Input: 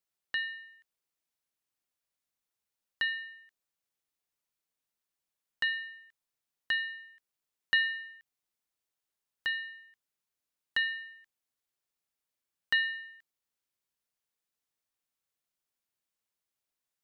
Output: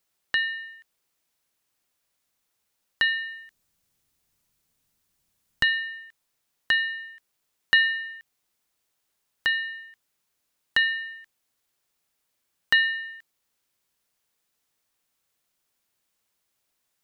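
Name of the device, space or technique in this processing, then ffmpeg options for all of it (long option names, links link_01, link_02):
parallel compression: -filter_complex "[0:a]asplit=2[link_01][link_02];[link_02]acompressor=threshold=-41dB:ratio=6,volume=-2dB[link_03];[link_01][link_03]amix=inputs=2:normalize=0,asettb=1/sr,asplit=3[link_04][link_05][link_06];[link_04]atrim=end=3.024[link_07];[link_05]atrim=start=3.02:end=5.8,asetpts=PTS-STARTPTS,afade=type=in:duration=0.004:curve=qsin,afade=type=out:start_time=2.776:duration=0.004:curve=qsin,bass=frequency=250:gain=13,treble=frequency=4000:gain=3[link_08];[link_06]atrim=start=5.796[link_09];[link_07][link_08]acrossfade=duration=0.004:curve1=hsin:curve2=qsin[link_10];[link_10][link_09]acrossfade=duration=0.004:curve1=qsin:curve2=hsin,volume=6.5dB"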